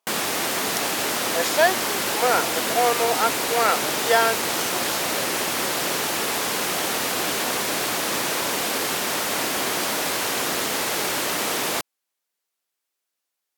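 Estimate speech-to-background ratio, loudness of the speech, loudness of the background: -0.5 dB, -23.5 LUFS, -23.0 LUFS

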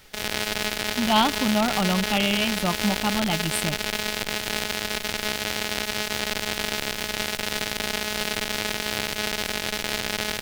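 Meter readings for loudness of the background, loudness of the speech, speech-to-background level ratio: -26.5 LUFS, -24.5 LUFS, 2.0 dB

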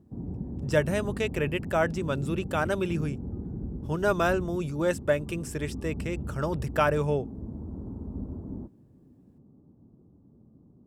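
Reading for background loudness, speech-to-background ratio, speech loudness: -37.5 LUFS, 8.5 dB, -29.0 LUFS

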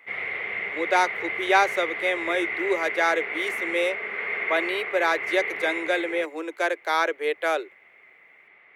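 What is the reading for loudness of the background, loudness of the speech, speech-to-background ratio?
-28.5 LUFS, -25.5 LUFS, 3.0 dB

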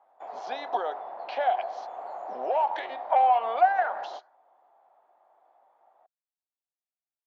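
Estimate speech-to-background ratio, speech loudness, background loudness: 12.0 dB, -26.5 LUFS, -38.5 LUFS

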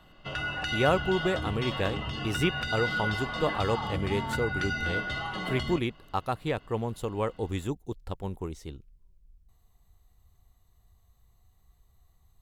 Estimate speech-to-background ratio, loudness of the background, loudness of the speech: 1.0 dB, -32.5 LUFS, -31.5 LUFS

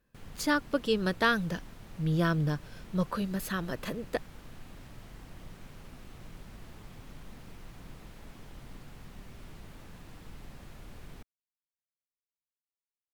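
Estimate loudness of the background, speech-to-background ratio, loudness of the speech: -51.0 LUFS, 20.0 dB, -31.0 LUFS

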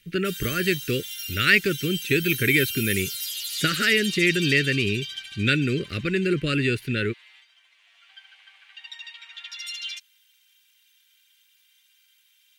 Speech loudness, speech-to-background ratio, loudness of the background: -23.0 LUFS, 8.5 dB, -31.5 LUFS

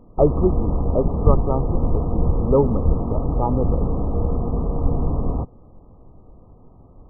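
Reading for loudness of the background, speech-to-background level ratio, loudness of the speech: -23.5 LUFS, -0.5 dB, -24.0 LUFS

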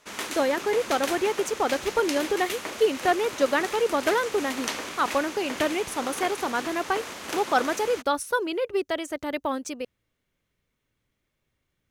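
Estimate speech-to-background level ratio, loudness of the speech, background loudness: 7.0 dB, -27.0 LUFS, -34.0 LUFS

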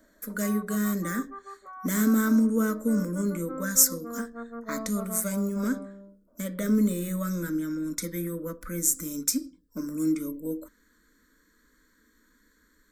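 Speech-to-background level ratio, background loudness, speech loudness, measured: 13.5 dB, -41.0 LUFS, -27.5 LUFS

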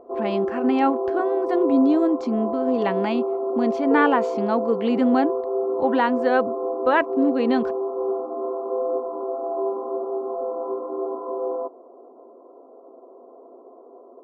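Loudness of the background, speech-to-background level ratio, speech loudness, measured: -26.5 LUFS, 4.0 dB, -22.5 LUFS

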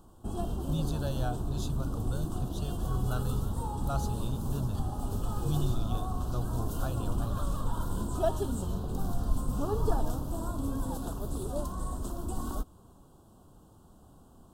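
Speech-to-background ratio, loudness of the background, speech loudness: -3.0 dB, -35.0 LUFS, -38.0 LUFS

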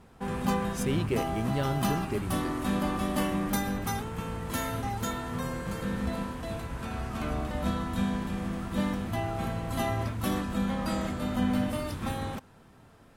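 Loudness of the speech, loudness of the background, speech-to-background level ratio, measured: -32.5 LUFS, -32.0 LUFS, -0.5 dB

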